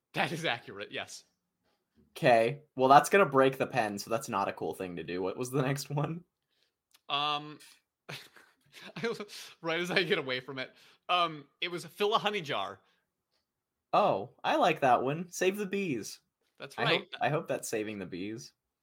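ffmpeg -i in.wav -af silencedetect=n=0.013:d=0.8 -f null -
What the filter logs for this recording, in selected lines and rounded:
silence_start: 1.17
silence_end: 2.16 | silence_duration: 1.00
silence_start: 6.18
silence_end: 7.10 | silence_duration: 0.92
silence_start: 12.74
silence_end: 13.94 | silence_duration: 1.20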